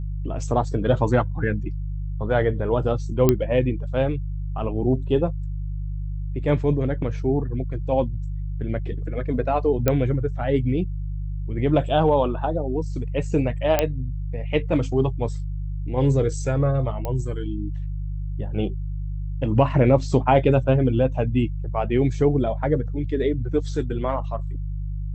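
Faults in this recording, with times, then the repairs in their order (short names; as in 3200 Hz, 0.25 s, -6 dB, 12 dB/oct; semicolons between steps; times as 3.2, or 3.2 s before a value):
hum 50 Hz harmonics 3 -28 dBFS
3.29 pop -4 dBFS
9.88 pop -5 dBFS
13.79 pop -4 dBFS
17.05 pop -15 dBFS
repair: de-click; de-hum 50 Hz, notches 3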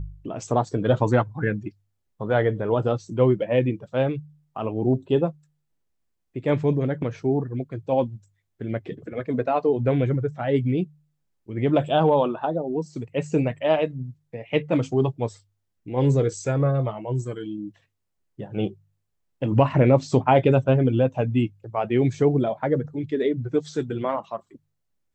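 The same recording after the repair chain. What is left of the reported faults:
none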